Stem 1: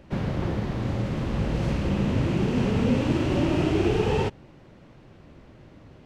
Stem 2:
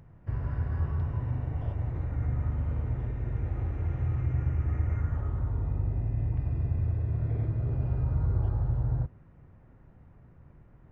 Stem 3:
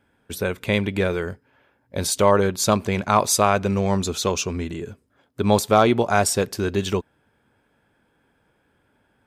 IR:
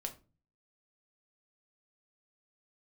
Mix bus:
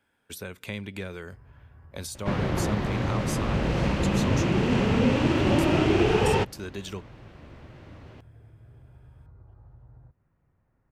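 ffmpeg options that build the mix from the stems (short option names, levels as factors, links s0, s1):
-filter_complex "[0:a]adelay=2150,volume=0.944[s0];[1:a]acompressor=threshold=0.0251:ratio=6,adelay=1050,volume=0.158[s1];[2:a]highshelf=f=3800:g=9.5,acrossover=split=260[s2][s3];[s3]acompressor=threshold=0.0398:ratio=4[s4];[s2][s4]amix=inputs=2:normalize=0,volume=0.251[s5];[s0][s1][s5]amix=inputs=3:normalize=0,equalizer=f=1700:w=0.35:g=5.5"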